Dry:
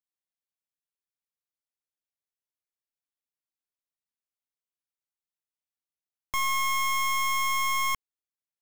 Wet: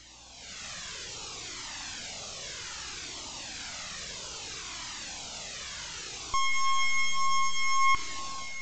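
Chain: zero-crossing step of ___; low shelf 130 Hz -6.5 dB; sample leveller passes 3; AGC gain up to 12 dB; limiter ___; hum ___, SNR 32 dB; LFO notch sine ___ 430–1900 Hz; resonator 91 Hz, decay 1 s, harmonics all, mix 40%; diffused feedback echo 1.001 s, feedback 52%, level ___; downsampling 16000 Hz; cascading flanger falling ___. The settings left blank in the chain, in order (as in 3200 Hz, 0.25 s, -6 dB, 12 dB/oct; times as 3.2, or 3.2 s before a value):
-40 dBFS, -16.5 dBFS, 60 Hz, 0.99 Hz, -13 dB, 0.62 Hz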